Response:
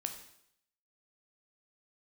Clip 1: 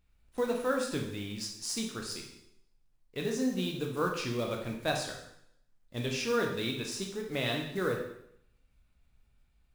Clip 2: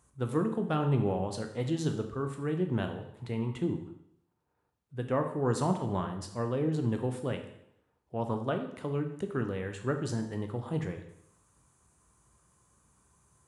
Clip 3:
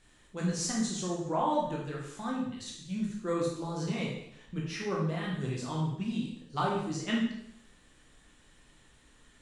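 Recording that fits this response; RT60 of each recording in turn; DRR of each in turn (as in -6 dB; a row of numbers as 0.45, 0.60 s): 2; 0.70, 0.70, 0.70 s; 1.0, 5.0, -3.5 dB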